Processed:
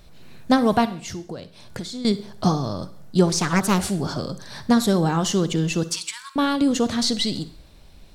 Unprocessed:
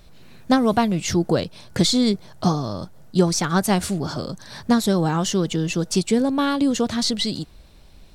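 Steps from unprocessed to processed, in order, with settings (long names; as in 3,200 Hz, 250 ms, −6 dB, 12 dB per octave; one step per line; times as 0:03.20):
0:00.85–0:02.05: downward compressor 5 to 1, threshold −32 dBFS, peak gain reduction 17 dB
0:05.83–0:06.36: linear-phase brick-wall high-pass 890 Hz
convolution reverb RT60 0.50 s, pre-delay 43 ms, DRR 13.5 dB
0:03.29–0:03.80: highs frequency-modulated by the lows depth 0.56 ms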